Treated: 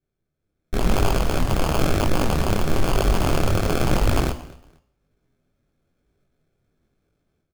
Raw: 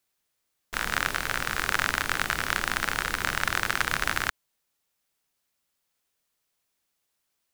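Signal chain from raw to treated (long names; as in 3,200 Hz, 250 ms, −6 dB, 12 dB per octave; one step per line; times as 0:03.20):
adaptive Wiener filter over 41 samples
low-pass filter 1,800 Hz 6 dB per octave
low-shelf EQ 210 Hz +9.5 dB
hum removal 59.58 Hz, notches 15
in parallel at +1 dB: brickwall limiter −19 dBFS, peak gain reduction 10 dB
on the sum: automatic gain control gain up to 11.5 dB
decimation without filtering 23×
soft clipping −10 dBFS, distortion −13 dB
repeating echo 233 ms, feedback 26%, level −21 dB
on a send at −15 dB: convolution reverb RT60 0.70 s, pre-delay 3 ms
on the sum: micro pitch shift up and down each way 34 cents
level +5 dB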